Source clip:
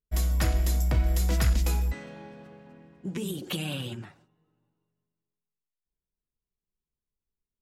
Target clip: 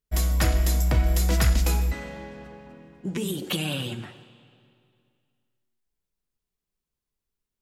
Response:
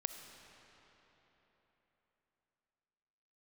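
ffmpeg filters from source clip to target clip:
-filter_complex "[0:a]asplit=2[a][b];[1:a]atrim=start_sample=2205,asetrate=74970,aresample=44100,lowshelf=f=180:g=-8[c];[b][c]afir=irnorm=-1:irlink=0,volume=4dB[d];[a][d]amix=inputs=2:normalize=0"

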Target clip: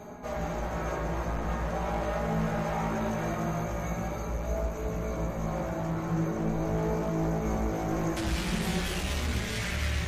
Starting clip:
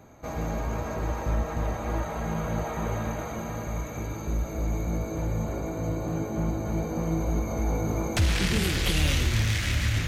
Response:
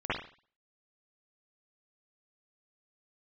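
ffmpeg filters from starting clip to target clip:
-filter_complex "[0:a]equalizer=f=700:t=o:w=1.7:g=3.5,areverse,acompressor=mode=upward:threshold=-28dB:ratio=2.5,areverse,flanger=delay=4.7:depth=1.1:regen=19:speed=0.43:shape=triangular,volume=33.5dB,asoftclip=hard,volume=-33.5dB,flanger=delay=16.5:depth=2:speed=0.21,asplit=2[a][b];[1:a]atrim=start_sample=2205,asetrate=30870,aresample=44100[c];[b][c]afir=irnorm=-1:irlink=0,volume=-10dB[d];[a][d]amix=inputs=2:normalize=0,volume=3.5dB" -ar 44100 -c:a libmp3lame -b:a 56k

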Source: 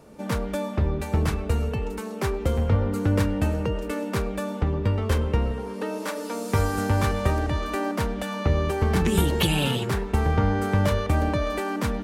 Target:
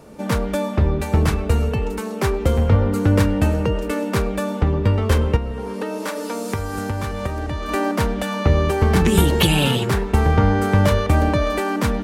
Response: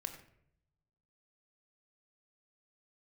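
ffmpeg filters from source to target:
-filter_complex "[0:a]asettb=1/sr,asplit=3[a][b][c];[a]atrim=end=5.364[d];[b]atrim=start=5.36:end=7.69,asetpts=PTS-STARTPTS,afade=t=in:d=0.004:c=qsin,afade=t=out:st=2.326:d=0.004:c=qsin,acompressor=threshold=-28dB:ratio=6[e];[c]atrim=start=7.686[f];[d][e]acrossfade=d=0.004:c1=hsin:c2=qsin[g];[g][f]acrossfade=d=0.004:c1=qsin:c2=hsin,volume=6dB"

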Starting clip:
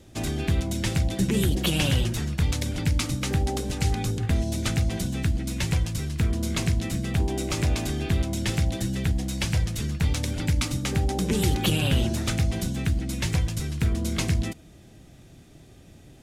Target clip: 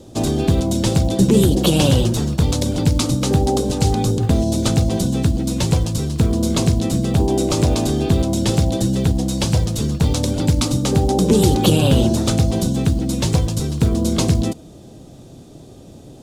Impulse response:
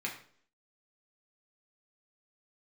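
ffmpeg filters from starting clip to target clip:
-af "acrusher=bits=9:mode=log:mix=0:aa=0.000001,equalizer=f=125:t=o:w=1:g=4,equalizer=f=250:t=o:w=1:g=6,equalizer=f=500:t=o:w=1:g=9,equalizer=f=1k:t=o:w=1:g=6,equalizer=f=2k:t=o:w=1:g=-9,equalizer=f=4k:t=o:w=1:g=5,equalizer=f=8k:t=o:w=1:g=4,volume=3.5dB"

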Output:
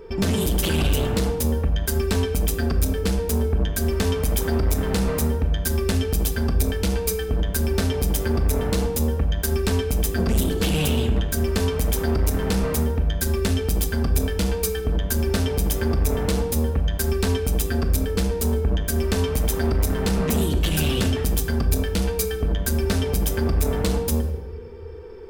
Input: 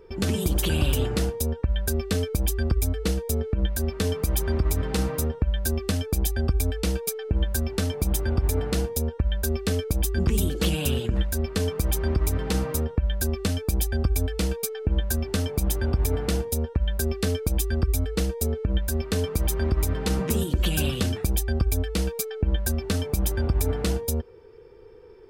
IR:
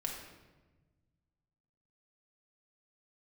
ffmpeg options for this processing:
-filter_complex "[0:a]asoftclip=type=tanh:threshold=-25.5dB,asplit=2[a][b];[1:a]atrim=start_sample=2205[c];[b][c]afir=irnorm=-1:irlink=0,volume=0dB[d];[a][d]amix=inputs=2:normalize=0,volume=2.5dB"

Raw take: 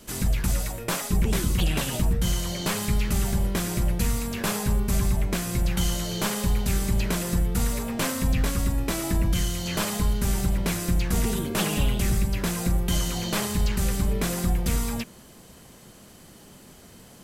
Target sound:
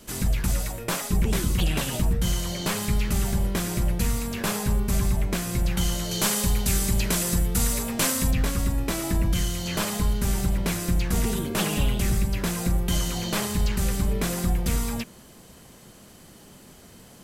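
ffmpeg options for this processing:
-filter_complex "[0:a]asettb=1/sr,asplit=3[a][b][c];[a]atrim=end=6.114[d];[b]atrim=start=6.11:end=8.31,asetpts=PTS-STARTPTS,afade=t=in:d=0.004:c=qsin,afade=t=out:st=2.196:d=0.004:c=qsin,equalizer=f=9.6k:t=o:w=2.5:g=7.5[e];[c]atrim=start=8.306[f];[d][e]acrossfade=d=0.004:c1=hsin:c2=qsin[g];[g][f]acrossfade=d=0.004:c1=qsin:c2=hsin"

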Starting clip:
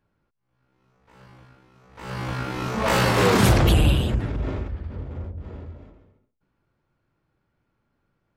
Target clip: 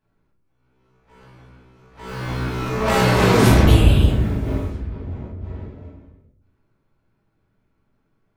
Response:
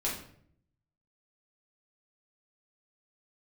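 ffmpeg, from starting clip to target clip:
-filter_complex "[0:a]asettb=1/sr,asplit=3[a][b][c];[a]atrim=end=2.074[d];[b]atrim=start=2.07:end=4.77,asetpts=PTS-STARTPTS,afade=t=in:d=0.004:c=qsin,afade=t=out:st=2.696:d=0.004:c=qsin,acrusher=bits=7:mix=0:aa=0.5[e];[c]atrim=start=4.766[f];[d][e]acrossfade=d=0.004:c1=hsin:c2=qsin[g];[g][f]acrossfade=d=0.004:c1=qsin:c2=hsin[h];[1:a]atrim=start_sample=2205[i];[h][i]afir=irnorm=-1:irlink=0,volume=-3dB"

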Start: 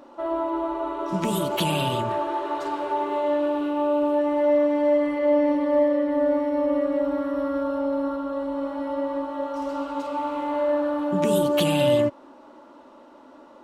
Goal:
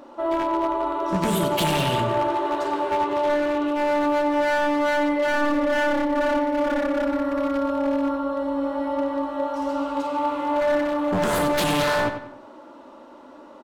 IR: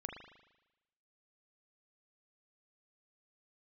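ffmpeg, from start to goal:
-filter_complex "[0:a]asettb=1/sr,asplit=3[a][b][c];[a]atrim=end=2.954[d];[b]atrim=start=2.95:end=3.67,asetpts=PTS-STARTPTS,afade=t=in:d=0.004:c=qsin,afade=t=out:st=0.716:d=0.004:c=qsin,lowpass=7.6k[e];[c]atrim=start=3.666[f];[d][e]acrossfade=d=0.004:c1=hsin:c2=qsin[g];[g][f]acrossfade=d=0.004:c1=qsin:c2=hsin,aeval=exprs='0.106*(abs(mod(val(0)/0.106+3,4)-2)-1)':c=same,asplit=2[h][i];[i]adelay=93,lowpass=f=4.1k:p=1,volume=-8.5dB,asplit=2[j][k];[k]adelay=93,lowpass=f=4.1k:p=1,volume=0.4,asplit=2[l][m];[m]adelay=93,lowpass=f=4.1k:p=1,volume=0.4,asplit=2[n][o];[o]adelay=93,lowpass=f=4.1k:p=1,volume=0.4[p];[h][j][l][n][p]amix=inputs=5:normalize=0,volume=3dB"

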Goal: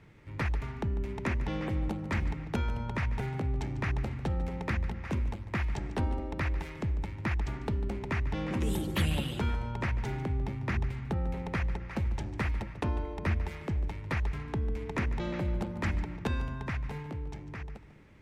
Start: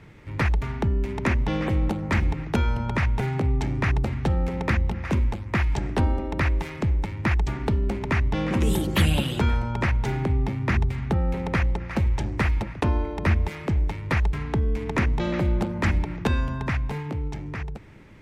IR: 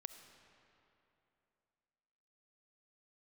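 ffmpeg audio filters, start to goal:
-filter_complex "[0:a]asplit=2[a][b];[1:a]atrim=start_sample=2205,adelay=147[c];[b][c]afir=irnorm=-1:irlink=0,volume=-9.5dB[d];[a][d]amix=inputs=2:normalize=0,volume=-8.5dB"

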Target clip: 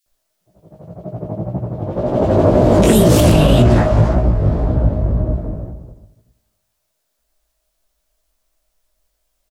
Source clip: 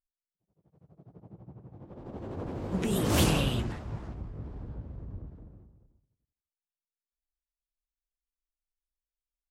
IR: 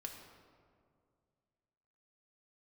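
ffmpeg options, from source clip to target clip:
-filter_complex "[0:a]acrossover=split=2300[a][b];[a]adelay=60[c];[c][b]amix=inputs=2:normalize=0,asplit=2[d][e];[1:a]atrim=start_sample=2205,asetrate=66150,aresample=44100[f];[e][f]afir=irnorm=-1:irlink=0,volume=-16dB[g];[d][g]amix=inputs=2:normalize=0,flanger=delay=16:depth=3.4:speed=1.9,equalizer=f=620:w=6:g=14,asplit=2[h][i];[i]aeval=exprs='(mod(4.73*val(0)+1,2)-1)/4.73':c=same,volume=-3dB[j];[h][j]amix=inputs=2:normalize=0,acrossover=split=130|460[k][l][m];[k]acompressor=threshold=-29dB:ratio=4[n];[l]acompressor=threshold=-29dB:ratio=4[o];[m]acompressor=threshold=-35dB:ratio=4[p];[n][o][p]amix=inputs=3:normalize=0,alimiter=level_in=23.5dB:limit=-1dB:release=50:level=0:latency=1,volume=-1dB"

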